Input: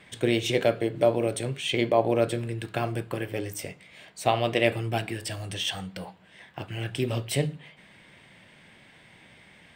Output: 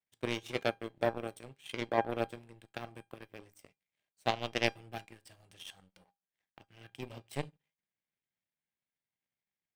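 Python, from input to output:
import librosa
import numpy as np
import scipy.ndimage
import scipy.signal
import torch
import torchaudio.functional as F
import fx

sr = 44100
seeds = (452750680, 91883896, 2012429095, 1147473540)

y = fx.power_curve(x, sr, exponent=2.0)
y = fx.comb_fb(y, sr, f0_hz=800.0, decay_s=0.19, harmonics='all', damping=0.0, mix_pct=60)
y = F.gain(torch.from_numpy(y), 5.5).numpy()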